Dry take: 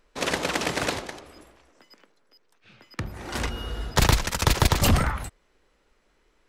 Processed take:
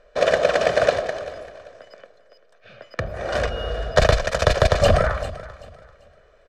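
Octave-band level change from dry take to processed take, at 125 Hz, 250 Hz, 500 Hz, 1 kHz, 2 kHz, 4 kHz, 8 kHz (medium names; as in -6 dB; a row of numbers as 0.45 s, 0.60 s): +1.0 dB, -3.0 dB, +13.0 dB, +4.0 dB, +4.0 dB, 0.0 dB, -5.5 dB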